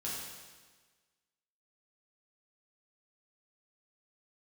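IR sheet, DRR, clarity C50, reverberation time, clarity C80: -7.0 dB, -0.5 dB, 1.4 s, 1.5 dB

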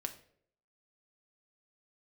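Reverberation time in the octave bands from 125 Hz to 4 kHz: 0.70 s, 0.70 s, 0.75 s, 0.50 s, 0.50 s, 0.40 s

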